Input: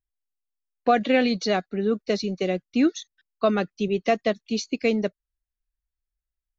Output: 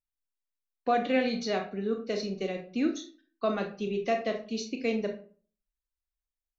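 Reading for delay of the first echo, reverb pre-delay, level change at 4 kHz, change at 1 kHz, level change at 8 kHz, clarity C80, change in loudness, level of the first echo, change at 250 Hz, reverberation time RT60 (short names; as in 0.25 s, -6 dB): none, 25 ms, -7.0 dB, -6.0 dB, n/a, 14.5 dB, -6.5 dB, none, -7.0 dB, 0.40 s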